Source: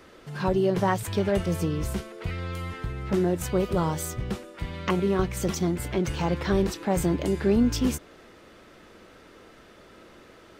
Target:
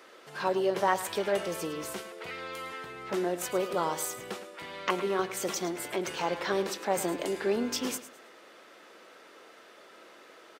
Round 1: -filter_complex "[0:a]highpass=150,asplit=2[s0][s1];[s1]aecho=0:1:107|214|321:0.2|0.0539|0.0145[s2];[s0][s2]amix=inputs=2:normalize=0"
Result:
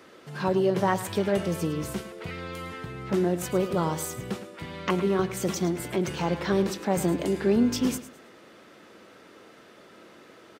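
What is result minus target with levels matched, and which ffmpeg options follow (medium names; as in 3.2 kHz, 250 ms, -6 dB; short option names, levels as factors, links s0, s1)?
125 Hz band +10.5 dB
-filter_complex "[0:a]highpass=450,asplit=2[s0][s1];[s1]aecho=0:1:107|214|321:0.2|0.0539|0.0145[s2];[s0][s2]amix=inputs=2:normalize=0"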